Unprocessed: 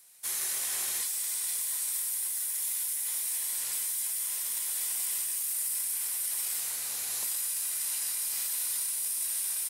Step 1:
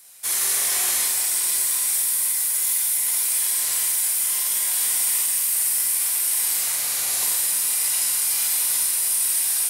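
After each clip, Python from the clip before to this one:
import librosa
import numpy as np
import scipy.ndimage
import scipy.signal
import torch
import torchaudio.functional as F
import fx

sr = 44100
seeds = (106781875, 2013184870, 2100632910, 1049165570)

y = fx.doubler(x, sr, ms=47.0, db=-4.5)
y = fx.room_shoebox(y, sr, seeds[0], volume_m3=180.0, walls='hard', distance_m=0.42)
y = y * librosa.db_to_amplitude(8.0)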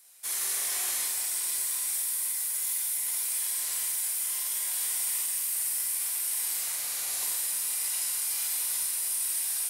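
y = fx.low_shelf(x, sr, hz=190.0, db=-6.5)
y = y * librosa.db_to_amplitude(-8.5)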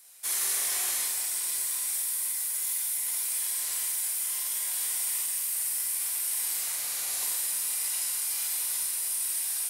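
y = fx.rider(x, sr, range_db=10, speed_s=2.0)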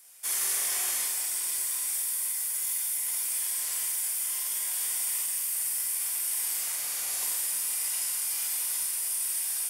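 y = fx.notch(x, sr, hz=4000.0, q=10.0)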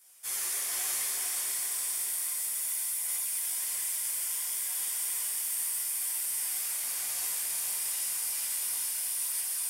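y = fx.chorus_voices(x, sr, voices=2, hz=0.8, base_ms=13, depth_ms=3.9, mix_pct=55)
y = fx.echo_diffused(y, sr, ms=484, feedback_pct=48, wet_db=-3.0)
y = y * librosa.db_to_amplitude(-1.0)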